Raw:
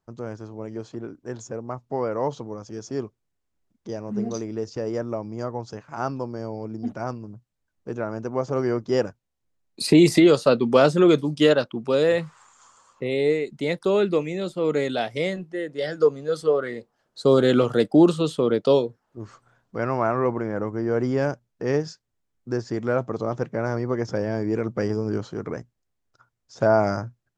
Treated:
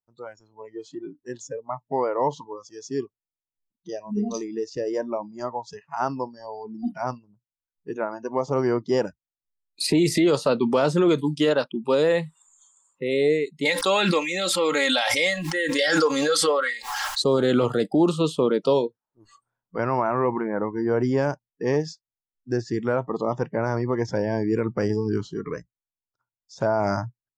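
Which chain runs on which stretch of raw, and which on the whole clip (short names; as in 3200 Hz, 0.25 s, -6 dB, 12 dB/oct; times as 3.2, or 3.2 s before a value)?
13.65–17.24 tilt shelf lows -9.5 dB, about 710 Hz + comb 3.7 ms, depth 60% + backwards sustainer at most 26 dB/s
whole clip: bell 930 Hz +6.5 dB 0.29 oct; spectral noise reduction 24 dB; limiter -13 dBFS; gain +1.5 dB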